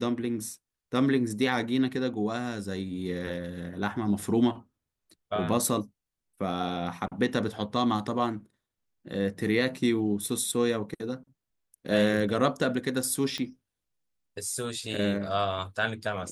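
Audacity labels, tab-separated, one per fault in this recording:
13.380000	13.380000	click −19 dBFS

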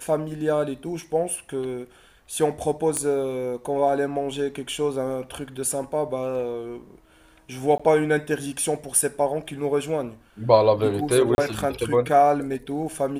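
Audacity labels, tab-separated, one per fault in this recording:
2.970000	2.970000	click −12 dBFS
7.780000	7.790000	drop-out 15 ms
11.350000	11.380000	drop-out 31 ms

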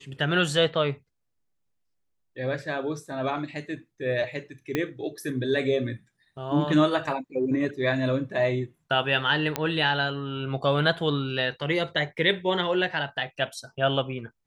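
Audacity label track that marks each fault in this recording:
4.750000	4.750000	click −12 dBFS
9.560000	9.560000	click −9 dBFS

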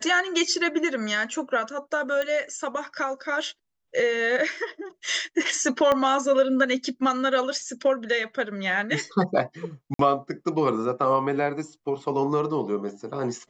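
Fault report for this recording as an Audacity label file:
2.220000	2.220000	click −16 dBFS
5.920000	5.920000	click −11 dBFS
9.940000	9.990000	drop-out 53 ms

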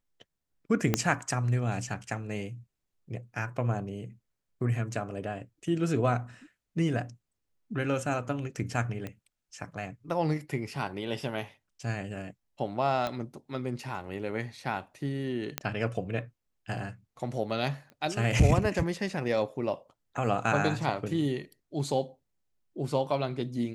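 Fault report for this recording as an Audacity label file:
0.940000	0.940000	click −9 dBFS
9.070000	9.070000	click −24 dBFS
13.070000	13.070000	click −18 dBFS
15.580000	15.580000	click −11 dBFS
17.900000	17.900000	click −35 dBFS

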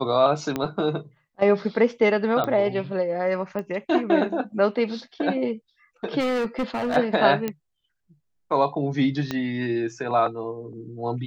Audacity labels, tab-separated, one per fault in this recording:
0.560000	0.560000	click −12 dBFS
2.440000	2.440000	click −13 dBFS
3.590000	3.590000	click −20 dBFS
6.190000	6.970000	clipping −21.5 dBFS
7.480000	7.480000	click −13 dBFS
9.310000	9.310000	click −13 dBFS

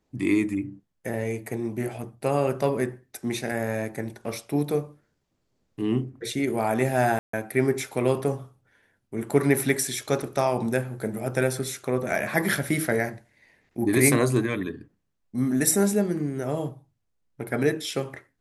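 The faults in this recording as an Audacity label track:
3.520000	3.520000	drop-out 2.1 ms
7.190000	7.330000	drop-out 144 ms
10.220000	10.220000	drop-out 4.6 ms

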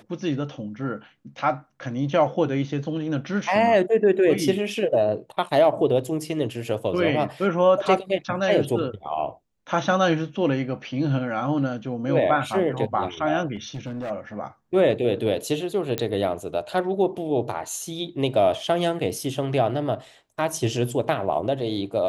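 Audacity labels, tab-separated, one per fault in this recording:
13.550000	14.110000	clipping −27.5 dBFS
15.980000	15.980000	click −10 dBFS

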